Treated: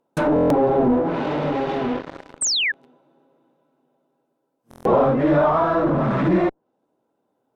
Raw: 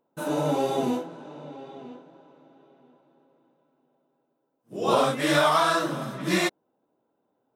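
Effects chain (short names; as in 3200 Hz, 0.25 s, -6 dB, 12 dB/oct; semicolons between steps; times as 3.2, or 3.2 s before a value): in parallel at -9.5 dB: fuzz box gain 45 dB, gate -48 dBFS; on the sum: treble ducked by the level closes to 850 Hz, closed at -18 dBFS; painted sound fall, 2.41–2.72, 1600–8900 Hz -23 dBFS; stuck buffer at 0.34/4.69, samples 1024, times 6; gain +2.5 dB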